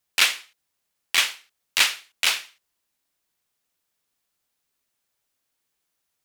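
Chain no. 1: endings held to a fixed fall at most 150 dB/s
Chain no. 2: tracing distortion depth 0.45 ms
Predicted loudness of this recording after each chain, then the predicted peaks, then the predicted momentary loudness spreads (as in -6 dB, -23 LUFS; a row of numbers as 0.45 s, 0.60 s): -32.0 LUFS, -23.0 LUFS; -7.5 dBFS, -4.5 dBFS; 10 LU, 8 LU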